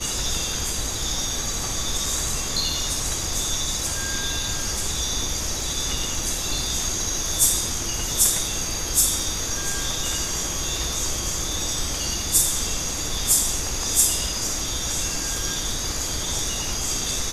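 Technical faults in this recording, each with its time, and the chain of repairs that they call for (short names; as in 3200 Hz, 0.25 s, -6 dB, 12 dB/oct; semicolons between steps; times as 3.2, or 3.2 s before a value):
5.61 gap 2.2 ms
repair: interpolate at 5.61, 2.2 ms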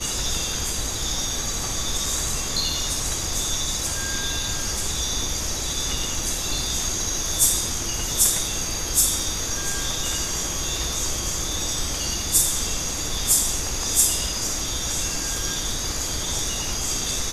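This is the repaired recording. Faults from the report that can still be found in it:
none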